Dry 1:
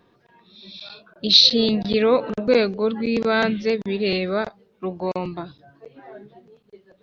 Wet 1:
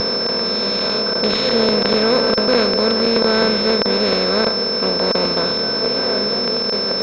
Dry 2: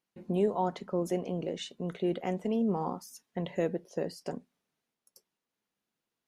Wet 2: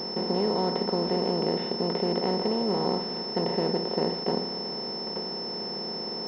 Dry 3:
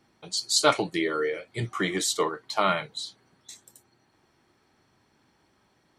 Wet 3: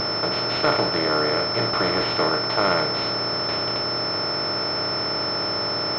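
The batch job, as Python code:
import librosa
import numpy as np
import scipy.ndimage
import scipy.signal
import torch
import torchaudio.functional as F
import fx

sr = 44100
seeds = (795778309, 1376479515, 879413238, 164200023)

y = fx.bin_compress(x, sr, power=0.2)
y = fx.vibrato(y, sr, rate_hz=0.49, depth_cents=14.0)
y = fx.pwm(y, sr, carrier_hz=5300.0)
y = y * 10.0 ** (-3.5 / 20.0)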